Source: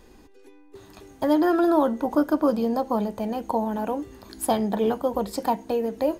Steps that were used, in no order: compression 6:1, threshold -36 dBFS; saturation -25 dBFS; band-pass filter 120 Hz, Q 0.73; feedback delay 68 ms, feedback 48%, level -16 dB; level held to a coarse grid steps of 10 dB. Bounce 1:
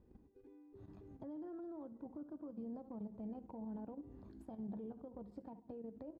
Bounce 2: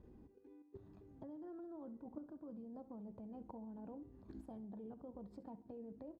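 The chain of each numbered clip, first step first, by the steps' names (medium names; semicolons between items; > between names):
feedback delay > compression > saturation > level held to a coarse grid > band-pass filter; compression > band-pass filter > saturation > level held to a coarse grid > feedback delay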